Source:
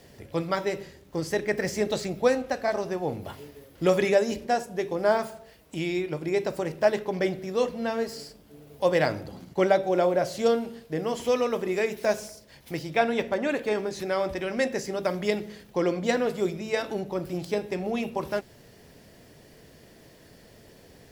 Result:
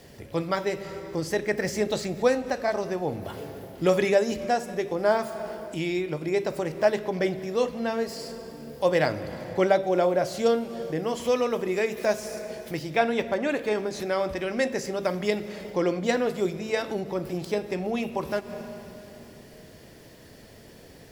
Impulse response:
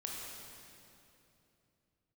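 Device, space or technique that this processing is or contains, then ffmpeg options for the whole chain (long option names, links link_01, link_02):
ducked reverb: -filter_complex "[0:a]asplit=3[link_01][link_02][link_03];[1:a]atrim=start_sample=2205[link_04];[link_02][link_04]afir=irnorm=-1:irlink=0[link_05];[link_03]apad=whole_len=931327[link_06];[link_05][link_06]sidechaincompress=threshold=-41dB:ratio=8:attack=16:release=110,volume=-5dB[link_07];[link_01][link_07]amix=inputs=2:normalize=0"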